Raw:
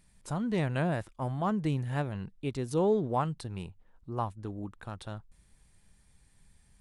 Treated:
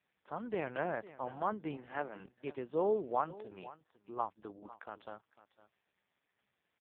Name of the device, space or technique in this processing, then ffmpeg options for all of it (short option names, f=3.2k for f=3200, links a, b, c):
satellite phone: -filter_complex "[0:a]asplit=3[a][b][c];[a]afade=t=out:st=1.76:d=0.02[d];[b]highpass=f=140:w=0.5412,highpass=f=140:w=1.3066,afade=t=in:st=1.76:d=0.02,afade=t=out:st=2.18:d=0.02[e];[c]afade=t=in:st=2.18:d=0.02[f];[d][e][f]amix=inputs=3:normalize=0,highpass=390,lowpass=3k,aecho=1:1:501:0.133,volume=-1.5dB" -ar 8000 -c:a libopencore_amrnb -b:a 4750